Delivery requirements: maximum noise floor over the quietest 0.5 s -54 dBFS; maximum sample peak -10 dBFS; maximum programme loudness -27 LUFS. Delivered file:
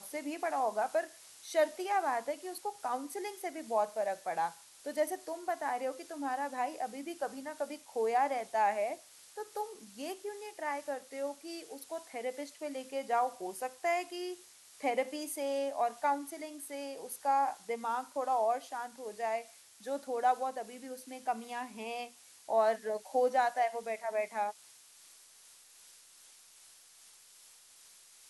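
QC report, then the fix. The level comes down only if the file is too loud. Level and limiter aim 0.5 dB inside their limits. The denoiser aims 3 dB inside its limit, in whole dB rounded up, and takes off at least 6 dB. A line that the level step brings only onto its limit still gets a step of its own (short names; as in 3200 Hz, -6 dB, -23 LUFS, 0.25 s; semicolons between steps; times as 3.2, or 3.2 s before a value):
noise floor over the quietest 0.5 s -59 dBFS: OK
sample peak -17.0 dBFS: OK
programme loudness -35.5 LUFS: OK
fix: none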